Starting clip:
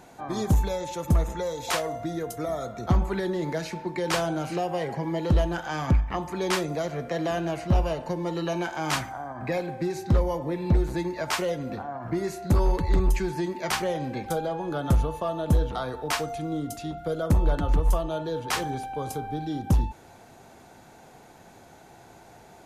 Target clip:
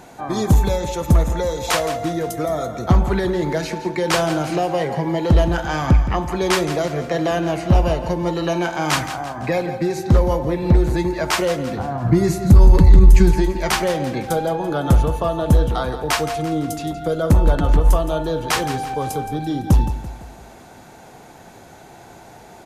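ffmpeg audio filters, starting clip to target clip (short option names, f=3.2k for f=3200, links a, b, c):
-filter_complex "[0:a]asettb=1/sr,asplit=3[a][b][c];[a]atrim=end=11.794[d];[b]atrim=start=11.79:end=13.31,asetpts=PTS-STARTPTS,afade=t=in:d=0.004:c=qsin,afade=t=out:st=1.516:d=0.004:c=qsin,bass=f=250:g=12,treble=f=4k:g=4[e];[c]atrim=start=13.306[f];[d][e]acrossfade=d=0.004:c1=hsin:c2=qsin[g];[g][f]acrossfade=d=0.004:c1=qsin:c2=hsin,aecho=1:1:169|338|507|676:0.251|0.111|0.0486|0.0214,alimiter=level_in=8.5dB:limit=-1dB:release=50:level=0:latency=1,volume=-1dB"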